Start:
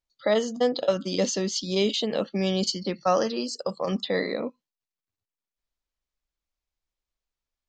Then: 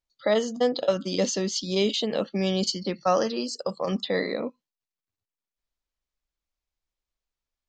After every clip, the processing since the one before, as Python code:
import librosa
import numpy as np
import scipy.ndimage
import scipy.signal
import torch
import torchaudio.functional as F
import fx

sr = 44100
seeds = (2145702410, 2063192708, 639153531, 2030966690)

y = x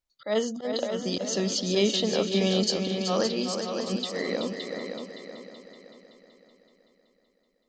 y = fx.auto_swell(x, sr, attack_ms=162.0)
y = fx.echo_heads(y, sr, ms=189, heads='second and third', feedback_pct=48, wet_db=-7.0)